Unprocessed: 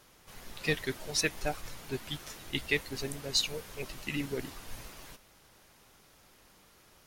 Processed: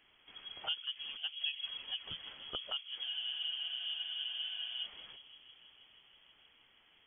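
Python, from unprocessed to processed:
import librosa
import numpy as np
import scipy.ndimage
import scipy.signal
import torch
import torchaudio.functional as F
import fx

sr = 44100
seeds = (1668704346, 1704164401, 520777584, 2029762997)

p1 = fx.env_lowpass_down(x, sr, base_hz=710.0, full_db=-29.5)
p2 = p1 + fx.echo_bbd(p1, sr, ms=160, stages=1024, feedback_pct=83, wet_db=-13.5, dry=0)
p3 = fx.freq_invert(p2, sr, carrier_hz=3300)
p4 = fx.spec_freeze(p3, sr, seeds[0], at_s=3.07, hold_s=1.77)
y = p4 * 10.0 ** (-5.5 / 20.0)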